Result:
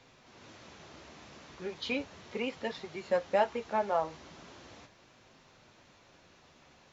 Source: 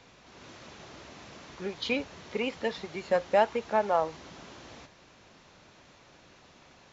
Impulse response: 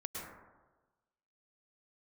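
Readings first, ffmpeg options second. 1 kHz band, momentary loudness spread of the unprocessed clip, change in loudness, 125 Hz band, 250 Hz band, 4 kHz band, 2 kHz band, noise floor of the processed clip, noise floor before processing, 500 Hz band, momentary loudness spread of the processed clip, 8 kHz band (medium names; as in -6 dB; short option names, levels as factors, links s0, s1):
-4.0 dB, 22 LU, -4.0 dB, -4.0 dB, -3.5 dB, -4.0 dB, -4.0 dB, -62 dBFS, -58 dBFS, -4.0 dB, 22 LU, no reading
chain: -af "flanger=delay=7.6:depth=5.9:regen=-46:speed=0.37:shape=sinusoidal"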